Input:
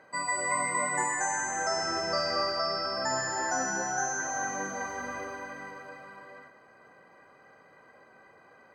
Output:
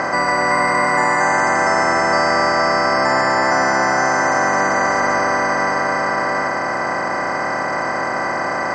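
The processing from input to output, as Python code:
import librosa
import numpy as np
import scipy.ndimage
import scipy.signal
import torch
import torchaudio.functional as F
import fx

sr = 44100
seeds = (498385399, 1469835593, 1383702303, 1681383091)

y = fx.bin_compress(x, sr, power=0.2)
y = scipy.signal.sosfilt(scipy.signal.butter(2, 3800.0, 'lowpass', fs=sr, output='sos'), y)
y = F.gain(torch.from_numpy(y), 8.5).numpy()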